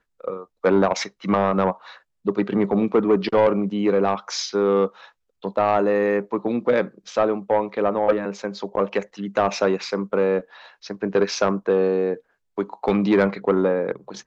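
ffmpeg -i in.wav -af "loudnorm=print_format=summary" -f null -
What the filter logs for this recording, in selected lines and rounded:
Input Integrated:    -22.0 LUFS
Input True Peak:      -9.4 dBTP
Input LRA:             2.1 LU
Input Threshold:     -32.4 LUFS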